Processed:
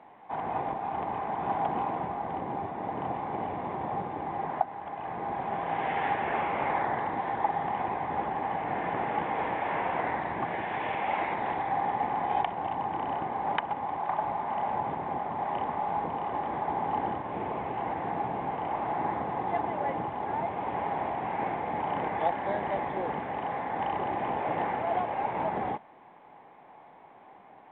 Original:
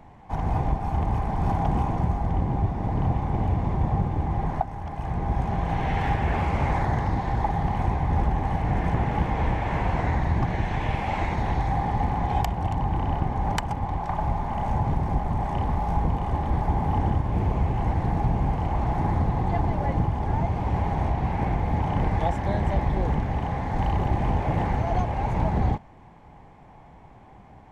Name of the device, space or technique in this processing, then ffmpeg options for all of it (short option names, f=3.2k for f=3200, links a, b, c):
telephone: -af "highpass=380,lowpass=3k" -ar 8000 -c:a pcm_mulaw